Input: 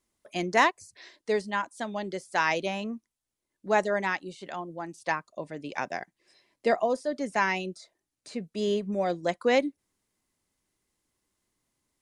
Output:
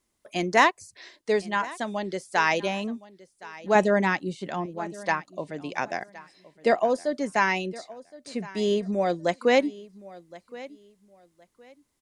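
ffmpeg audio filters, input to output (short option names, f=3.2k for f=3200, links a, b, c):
-filter_complex "[0:a]asettb=1/sr,asplit=3[a][b][c];[a]atrim=end=3.754[d];[b]atrim=start=3.75:end=4.66,asetpts=PTS-STARTPTS,afade=t=in:d=0.004:c=qsin,afade=t=out:st=0.906:d=0.004:c=qsin,equalizer=f=150:t=o:w=2.5:g=9[e];[c]atrim=start=4.656[f];[d][e]acrossfade=d=0.004:c1=hsin:c2=qsin[g];[g][f]acrossfade=d=0.004:c1=qsin:c2=hsin,asplit=2[h][i];[i]aecho=0:1:1067|2134:0.106|0.0254[j];[h][j]amix=inputs=2:normalize=0,volume=3dB"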